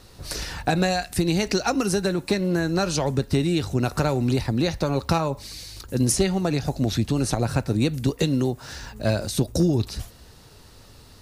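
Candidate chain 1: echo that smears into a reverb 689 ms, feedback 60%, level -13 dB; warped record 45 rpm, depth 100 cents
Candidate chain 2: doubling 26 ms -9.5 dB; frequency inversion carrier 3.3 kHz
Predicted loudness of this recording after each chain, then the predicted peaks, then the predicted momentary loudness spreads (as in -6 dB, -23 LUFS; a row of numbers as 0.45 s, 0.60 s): -24.0 LUFS, -20.0 LUFS; -9.5 dBFS, -8.0 dBFS; 11 LU, 8 LU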